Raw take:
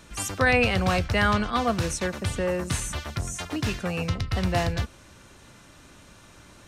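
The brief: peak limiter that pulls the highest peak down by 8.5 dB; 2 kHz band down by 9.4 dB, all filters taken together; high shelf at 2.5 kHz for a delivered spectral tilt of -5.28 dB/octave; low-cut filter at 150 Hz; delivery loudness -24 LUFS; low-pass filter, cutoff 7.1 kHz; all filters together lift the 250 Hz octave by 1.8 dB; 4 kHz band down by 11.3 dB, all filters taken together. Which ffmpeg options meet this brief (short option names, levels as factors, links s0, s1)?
-af "highpass=150,lowpass=7100,equalizer=f=250:t=o:g=4,equalizer=f=2000:t=o:g=-8.5,highshelf=f=2500:g=-4.5,equalizer=f=4000:t=o:g=-7.5,volume=2.24,alimiter=limit=0.211:level=0:latency=1"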